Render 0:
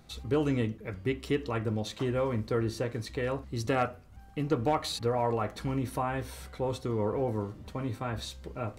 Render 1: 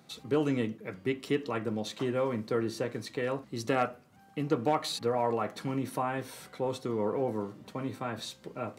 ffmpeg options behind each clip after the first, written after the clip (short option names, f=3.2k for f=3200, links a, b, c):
-af "highpass=f=140:w=0.5412,highpass=f=140:w=1.3066"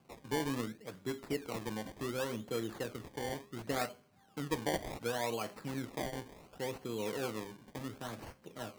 -af "bandreject=f=202.8:t=h:w=4,bandreject=f=405.6:t=h:w=4,bandreject=f=608.4:t=h:w=4,bandreject=f=811.2:t=h:w=4,bandreject=f=1.014k:t=h:w=4,bandreject=f=1.2168k:t=h:w=4,bandreject=f=1.4196k:t=h:w=4,bandreject=f=1.6224k:t=h:w=4,bandreject=f=1.8252k:t=h:w=4,bandreject=f=2.028k:t=h:w=4,bandreject=f=2.2308k:t=h:w=4,bandreject=f=2.4336k:t=h:w=4,acrusher=samples=23:mix=1:aa=0.000001:lfo=1:lforange=23:lforate=0.69,volume=-7dB"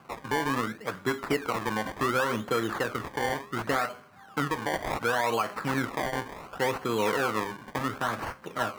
-af "equalizer=f=1.3k:t=o:w=1.5:g=13,alimiter=level_in=0.5dB:limit=-24dB:level=0:latency=1:release=171,volume=-0.5dB,volume=8.5dB"